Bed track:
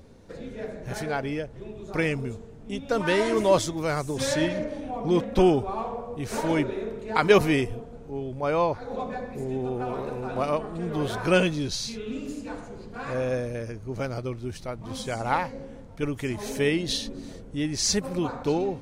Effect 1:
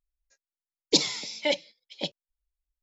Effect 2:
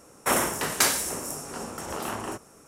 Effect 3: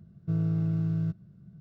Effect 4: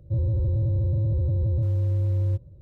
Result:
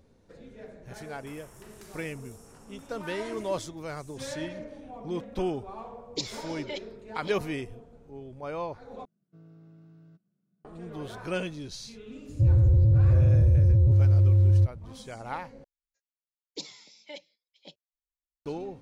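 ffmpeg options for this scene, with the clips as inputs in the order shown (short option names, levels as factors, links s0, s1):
-filter_complex "[1:a]asplit=2[s0][s1];[0:a]volume=0.299[s2];[2:a]acompressor=threshold=0.00447:ratio=6:attack=3.2:release=140:knee=1:detection=peak[s3];[3:a]highpass=f=200:w=0.5412,highpass=f=200:w=1.3066[s4];[4:a]lowshelf=f=260:g=7[s5];[s2]asplit=3[s6][s7][s8];[s6]atrim=end=9.054[s9];[s4]atrim=end=1.6,asetpts=PTS-STARTPTS,volume=0.133[s10];[s7]atrim=start=10.646:end=15.644[s11];[s1]atrim=end=2.82,asetpts=PTS-STARTPTS,volume=0.133[s12];[s8]atrim=start=18.456[s13];[s3]atrim=end=2.67,asetpts=PTS-STARTPTS,volume=0.531,afade=t=in:d=0.004:c=hsin,afade=t=out:st=2.666:d=0.004:c=hsin,adelay=1010[s14];[s0]atrim=end=2.82,asetpts=PTS-STARTPTS,volume=0.251,afade=t=in:d=0.004:c=hsin,afade=t=out:st=2.816:d=0.004:c=hsin,adelay=5240[s15];[s5]atrim=end=2.61,asetpts=PTS-STARTPTS,volume=0.794,afade=t=in:d=0.004:c=hsin,afade=t=out:st=2.606:d=0.004:c=hsin,adelay=12290[s16];[s9][s10]acrossfade=d=0.004:c1=hsin:c2=hsin[s17];[s17][s11]acrossfade=d=0.004:c1=hsin:c2=hsin[s18];[s18][s12]acrossfade=d=0.004:c1=hsin:c2=hsin[s19];[s19][s13]acrossfade=d=0.004:c1=hsin:c2=hsin[s20];[s20][s14][s15][s16]amix=inputs=4:normalize=0"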